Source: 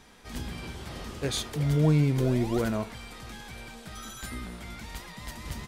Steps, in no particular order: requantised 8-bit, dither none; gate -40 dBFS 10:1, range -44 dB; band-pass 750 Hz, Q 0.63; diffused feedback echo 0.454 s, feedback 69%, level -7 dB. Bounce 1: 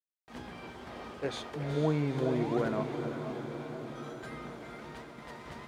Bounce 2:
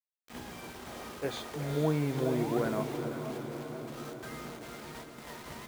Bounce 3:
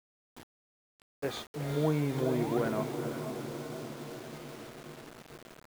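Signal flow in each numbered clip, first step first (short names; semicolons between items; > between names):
gate > diffused feedback echo > requantised > band-pass; gate > band-pass > requantised > diffused feedback echo; band-pass > gate > diffused feedback echo > requantised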